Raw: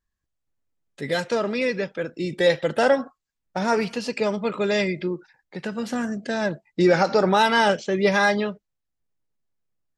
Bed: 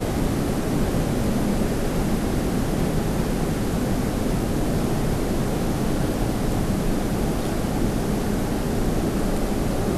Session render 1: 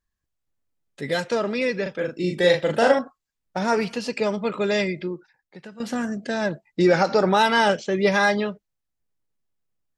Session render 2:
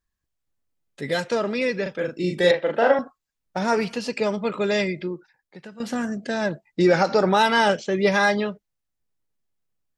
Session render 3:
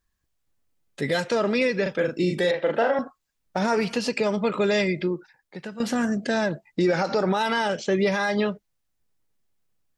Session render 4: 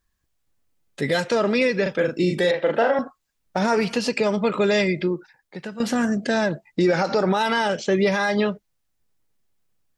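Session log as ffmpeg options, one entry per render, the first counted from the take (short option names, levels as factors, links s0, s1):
-filter_complex "[0:a]asettb=1/sr,asplit=3[s0][s1][s2];[s0]atrim=end=1.824[s3];[s1]atrim=start=1.82:end=2.99,asetpts=PTS-STARTPTS,afade=t=in:d=0.004:c=qsin,afade=t=out:st=1.166:d=0.004:c=qsin,asplit=2[s4][s5];[s5]adelay=39,volume=0.668[s6];[s4][s6]amix=inputs=2:normalize=0,atrim=end_sample=51597[s7];[s2]atrim=start=2.986[s8];[s3][s7]acrossfade=d=0.004:c1=hsin:c2=qsin[s9];[s9][s8]acrossfade=d=0.004:c1=qsin:c2=hsin,asplit=2[s10][s11];[s10]atrim=end=5.8,asetpts=PTS-STARTPTS,afade=t=out:st=4.75:d=1.05:silence=0.188365[s12];[s11]atrim=start=5.8,asetpts=PTS-STARTPTS,afade=t=in:d=0.004:c=hsin:silence=0.188365[s13];[s12][s13]concat=n=2:v=0:a=1"
-filter_complex "[0:a]asettb=1/sr,asplit=3[s0][s1][s2];[s0]atrim=end=2.514[s3];[s1]atrim=start=2.51:end=2.99,asetpts=PTS-STARTPTS,afade=t=in:d=0.004:c=qsin,afade=t=out:st=0.476:d=0.004:c=qsin,highpass=280,lowpass=2500[s4];[s2]atrim=start=2.986[s5];[s3][s4]acrossfade=d=0.004:c1=hsin:c2=qsin[s6];[s6][s5]acrossfade=d=0.004:c1=qsin:c2=hsin"
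-filter_complex "[0:a]asplit=2[s0][s1];[s1]acompressor=threshold=0.0398:ratio=6,volume=0.794[s2];[s0][s2]amix=inputs=2:normalize=0,alimiter=limit=0.211:level=0:latency=1:release=109"
-af "volume=1.33"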